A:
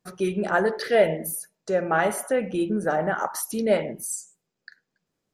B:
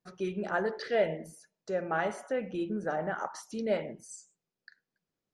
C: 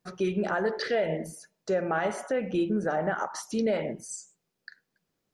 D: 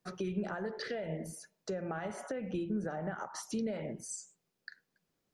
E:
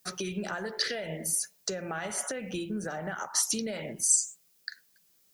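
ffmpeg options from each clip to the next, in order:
-af "lowpass=f=6.9k:w=0.5412,lowpass=f=6.9k:w=1.3066,volume=-8.5dB"
-af "alimiter=level_in=2.5dB:limit=-24dB:level=0:latency=1:release=141,volume=-2.5dB,volume=8dB"
-filter_complex "[0:a]acrossover=split=190[a][b];[b]acompressor=threshold=-35dB:ratio=6[c];[a][c]amix=inputs=2:normalize=0,volume=-2dB"
-af "crystalizer=i=8.5:c=0"

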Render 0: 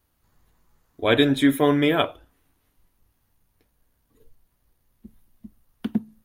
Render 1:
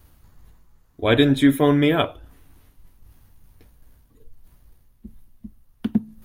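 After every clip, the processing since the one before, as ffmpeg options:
-af "lowshelf=f=170:g=9.5,areverse,acompressor=mode=upward:threshold=-39dB:ratio=2.5,areverse"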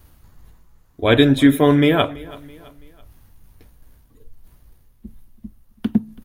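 -af "aecho=1:1:331|662|993:0.0891|0.0383|0.0165,volume=3dB"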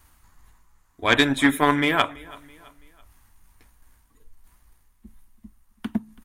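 -af "aeval=exprs='0.891*(cos(1*acos(clip(val(0)/0.891,-1,1)))-cos(1*PI/2))+0.112*(cos(3*acos(clip(val(0)/0.891,-1,1)))-cos(3*PI/2))':c=same,equalizer=f=125:t=o:w=1:g=-7,equalizer=f=500:t=o:w=1:g=-6,equalizer=f=1k:t=o:w=1:g=8,equalizer=f=2k:t=o:w=1:g=6,equalizer=f=8k:t=o:w=1:g=10,volume=-3dB"

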